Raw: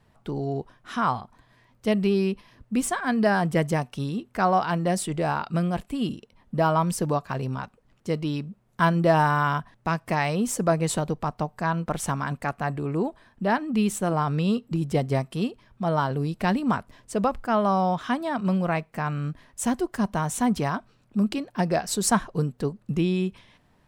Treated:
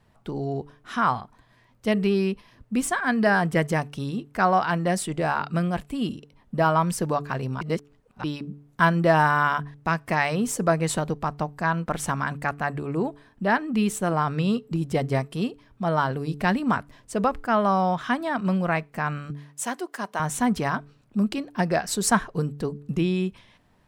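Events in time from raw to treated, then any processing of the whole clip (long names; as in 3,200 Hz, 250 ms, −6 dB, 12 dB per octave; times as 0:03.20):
0:07.61–0:08.24: reverse
0:19.30–0:20.20: Bessel high-pass filter 510 Hz
whole clip: hum removal 144.6 Hz, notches 3; dynamic equaliser 1,700 Hz, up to +5 dB, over −40 dBFS, Q 1.4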